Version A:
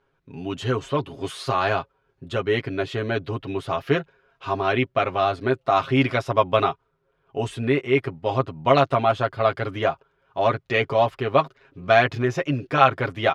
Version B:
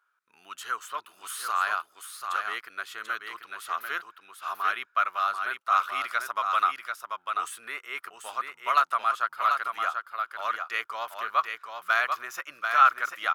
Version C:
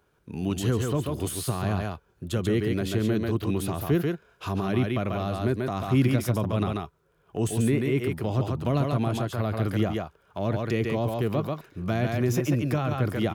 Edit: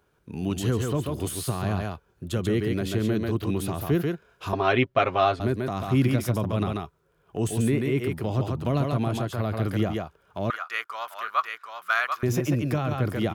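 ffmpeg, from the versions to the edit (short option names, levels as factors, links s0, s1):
-filter_complex "[2:a]asplit=3[s0][s1][s2];[s0]atrim=end=4.532[s3];[0:a]atrim=start=4.528:end=5.402[s4];[s1]atrim=start=5.398:end=10.502[s5];[1:a]atrim=start=10.498:end=12.232[s6];[s2]atrim=start=12.228[s7];[s3][s4]acrossfade=d=0.004:c1=hsin:c2=hsin[s8];[s8][s5]acrossfade=d=0.004:c1=hsin:c2=hsin[s9];[s9][s6]acrossfade=d=0.004:c1=hsin:c2=hsin[s10];[s10][s7]acrossfade=d=0.004:c1=hsin:c2=hsin"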